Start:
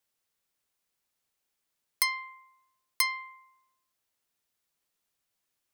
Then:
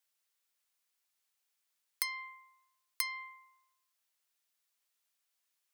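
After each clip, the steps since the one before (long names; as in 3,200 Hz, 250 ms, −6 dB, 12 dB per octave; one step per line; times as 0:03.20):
downward compressor 5 to 1, threshold −31 dBFS, peak gain reduction 9.5 dB
high-pass filter 1,200 Hz 6 dB per octave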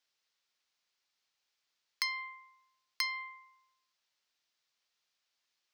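high shelf with overshoot 7,300 Hz −13.5 dB, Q 1.5
level +2.5 dB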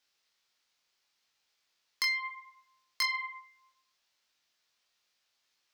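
chorus effect 0.71 Hz, delay 19 ms, depth 4.4 ms
in parallel at −9 dB: sine wavefolder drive 9 dB, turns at −19.5 dBFS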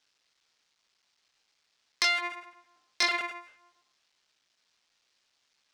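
sub-harmonics by changed cycles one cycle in 3, muted
Savitzky-Golay smoothing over 9 samples
level +6 dB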